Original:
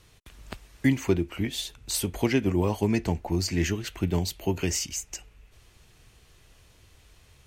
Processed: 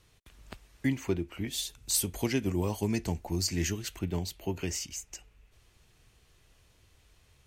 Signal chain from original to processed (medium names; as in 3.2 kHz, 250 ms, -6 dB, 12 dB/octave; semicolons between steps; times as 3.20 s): 1.47–3.99 s: tone controls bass +2 dB, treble +9 dB; trim -6.5 dB